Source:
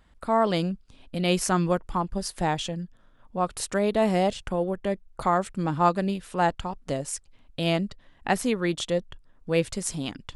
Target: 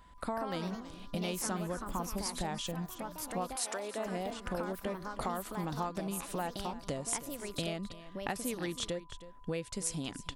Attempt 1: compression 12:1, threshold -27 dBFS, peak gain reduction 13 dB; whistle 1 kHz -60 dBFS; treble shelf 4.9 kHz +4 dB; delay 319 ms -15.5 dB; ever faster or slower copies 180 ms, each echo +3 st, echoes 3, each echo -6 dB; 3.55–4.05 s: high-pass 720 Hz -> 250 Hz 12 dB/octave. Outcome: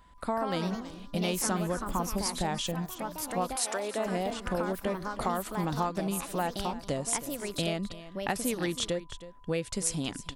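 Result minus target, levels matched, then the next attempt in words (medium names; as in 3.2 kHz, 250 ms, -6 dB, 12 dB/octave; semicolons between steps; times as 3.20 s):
compression: peak gain reduction -6 dB
compression 12:1, threshold -33.5 dBFS, peak gain reduction 19 dB; whistle 1 kHz -60 dBFS; treble shelf 4.9 kHz +4 dB; delay 319 ms -15.5 dB; ever faster or slower copies 180 ms, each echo +3 st, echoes 3, each echo -6 dB; 3.55–4.05 s: high-pass 720 Hz -> 250 Hz 12 dB/octave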